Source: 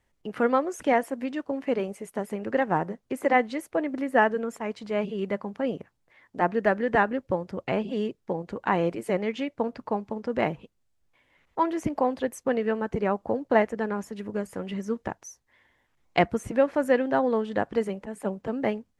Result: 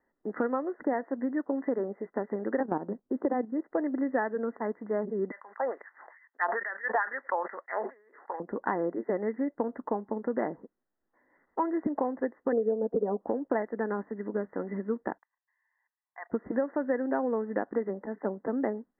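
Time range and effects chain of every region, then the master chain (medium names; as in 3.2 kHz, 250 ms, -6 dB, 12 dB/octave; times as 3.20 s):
2.60–3.64 s: low-pass 1.6 kHz 24 dB/octave + level held to a coarse grid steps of 12 dB + bass shelf 460 Hz +11 dB
5.31–8.40 s: high-pass 270 Hz + LFO high-pass sine 2.3 Hz 730–7500 Hz + decay stretcher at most 56 dB/s
12.52–13.21 s: resonant low-pass 550 Hz, resonance Q 2.6 + comb 4.2 ms, depth 80%
15.18–16.30 s: high-pass 980 Hz 24 dB/octave + level held to a coarse grid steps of 19 dB + comb of notches 1.4 kHz
whole clip: Chebyshev low-pass 2 kHz, order 10; resonant low shelf 170 Hz -14 dB, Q 1.5; compression 6:1, threshold -25 dBFS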